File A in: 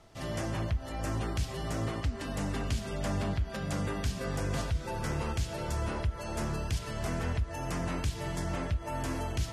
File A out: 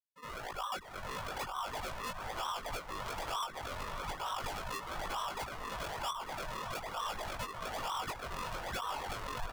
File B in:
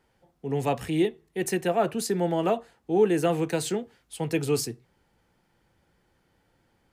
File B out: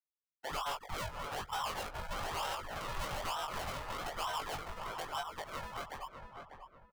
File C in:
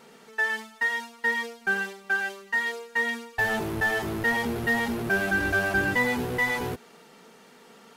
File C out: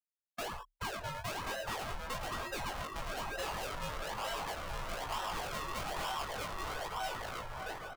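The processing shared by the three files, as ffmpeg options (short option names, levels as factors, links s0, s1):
-filter_complex "[0:a]lowpass=f=3000:t=q:w=0.5098,lowpass=f=3000:t=q:w=0.6013,lowpass=f=3000:t=q:w=0.9,lowpass=f=3000:t=q:w=2.563,afreqshift=-3500,asplit=2[s0][s1];[s1]aecho=0:1:650|1040|1274|1414|1499:0.631|0.398|0.251|0.158|0.1[s2];[s0][s2]amix=inputs=2:normalize=0,afftfilt=real='re*gte(hypot(re,im),0.0708)':imag='im*gte(hypot(re,im),0.0708)':win_size=1024:overlap=0.75,acrusher=samples=38:mix=1:aa=0.000001:lfo=1:lforange=38:lforate=1.1,equalizer=f=990:w=0.5:g=14.5,dynaudnorm=f=580:g=3:m=2.66,asoftclip=type=hard:threshold=0.168,equalizer=f=310:w=0.58:g=-15,flanger=delay=18.5:depth=2.7:speed=0.41,asplit=2[s3][s4];[s4]adelay=594,lowpass=f=1700:p=1,volume=0.266,asplit=2[s5][s6];[s6]adelay=594,lowpass=f=1700:p=1,volume=0.32,asplit=2[s7][s8];[s8]adelay=594,lowpass=f=1700:p=1,volume=0.32[s9];[s5][s7][s9]amix=inputs=3:normalize=0[s10];[s3][s10]amix=inputs=2:normalize=0,acompressor=threshold=0.00794:ratio=2,afreqshift=-34,volume=0.891"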